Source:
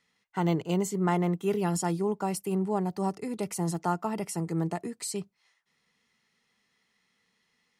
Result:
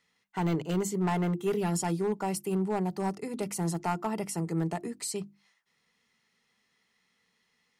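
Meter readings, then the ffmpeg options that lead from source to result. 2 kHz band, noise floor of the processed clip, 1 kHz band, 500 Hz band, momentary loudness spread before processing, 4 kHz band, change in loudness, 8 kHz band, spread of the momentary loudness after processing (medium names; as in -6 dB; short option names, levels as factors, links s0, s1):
0.0 dB, -75 dBFS, -1.5 dB, -1.0 dB, 7 LU, -0.5 dB, -1.0 dB, 0.0 dB, 6 LU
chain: -af "asoftclip=type=hard:threshold=0.0841,bandreject=f=50:t=h:w=6,bandreject=f=100:t=h:w=6,bandreject=f=150:t=h:w=6,bandreject=f=200:t=h:w=6,bandreject=f=250:t=h:w=6,bandreject=f=300:t=h:w=6,bandreject=f=350:t=h:w=6"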